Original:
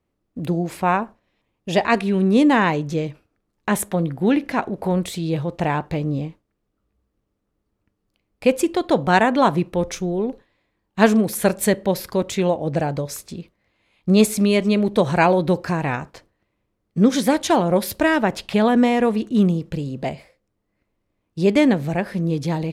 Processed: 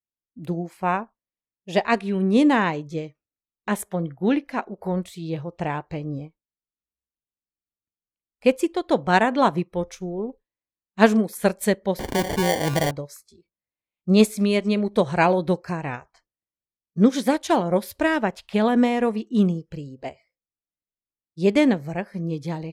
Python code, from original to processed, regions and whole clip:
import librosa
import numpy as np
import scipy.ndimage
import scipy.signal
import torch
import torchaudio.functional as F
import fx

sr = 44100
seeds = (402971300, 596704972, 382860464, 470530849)

y = fx.chain(x, sr, fx.air_absorb(metres=50.0),
    fx.sample_hold(seeds[0], rate_hz=1300.0, jitter_pct=0),
    fx.env_flatten(amount_pct=70), at=(11.99, 12.91))
y = fx.noise_reduce_blind(y, sr, reduce_db=17)
y = fx.upward_expand(y, sr, threshold_db=-37.0, expansion=1.5)